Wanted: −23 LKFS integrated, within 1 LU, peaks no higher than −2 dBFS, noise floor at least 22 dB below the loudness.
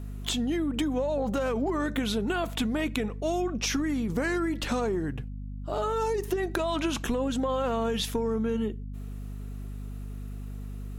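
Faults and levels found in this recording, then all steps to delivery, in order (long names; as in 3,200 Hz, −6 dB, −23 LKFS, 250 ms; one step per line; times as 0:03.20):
mains hum 50 Hz; hum harmonics up to 250 Hz; level of the hum −34 dBFS; integrated loudness −29.0 LKFS; sample peak −13.5 dBFS; target loudness −23.0 LKFS
→ mains-hum notches 50/100/150/200/250 Hz
level +6 dB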